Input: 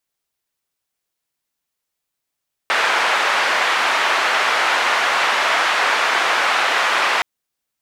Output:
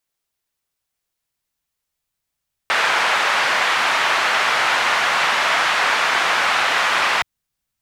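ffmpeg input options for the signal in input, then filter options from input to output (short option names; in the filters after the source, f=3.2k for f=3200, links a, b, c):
-f lavfi -i "anoisesrc=c=white:d=4.52:r=44100:seed=1,highpass=f=790,lowpass=f=1800,volume=0.1dB"
-af "asubboost=boost=4.5:cutoff=160"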